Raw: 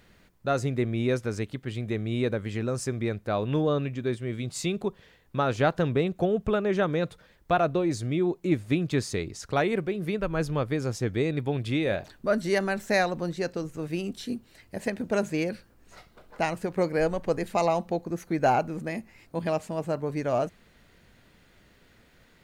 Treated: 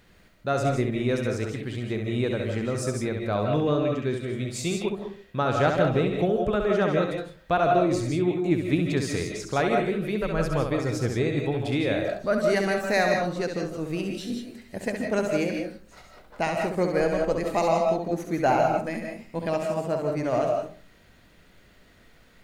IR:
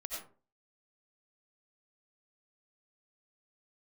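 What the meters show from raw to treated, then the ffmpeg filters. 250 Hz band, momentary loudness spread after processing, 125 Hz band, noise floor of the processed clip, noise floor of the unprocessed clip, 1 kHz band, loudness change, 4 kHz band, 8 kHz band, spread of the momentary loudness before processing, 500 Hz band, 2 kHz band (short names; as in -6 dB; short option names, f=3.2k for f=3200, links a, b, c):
+2.0 dB, 8 LU, +1.5 dB, -56 dBFS, -60 dBFS, +3.0 dB, +2.5 dB, +2.5 dB, +2.0 dB, 8 LU, +3.0 dB, +2.5 dB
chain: -filter_complex "[0:a]asplit=2[a][b];[1:a]atrim=start_sample=2205,adelay=67[c];[b][c]afir=irnorm=-1:irlink=0,volume=-1dB[d];[a][d]amix=inputs=2:normalize=0"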